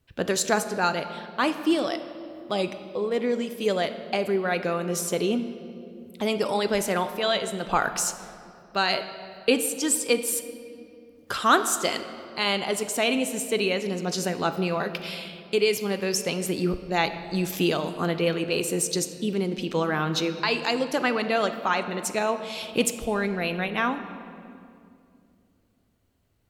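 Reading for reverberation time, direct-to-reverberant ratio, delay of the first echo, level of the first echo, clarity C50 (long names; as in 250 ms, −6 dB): 2.5 s, 9.0 dB, no echo audible, no echo audible, 10.5 dB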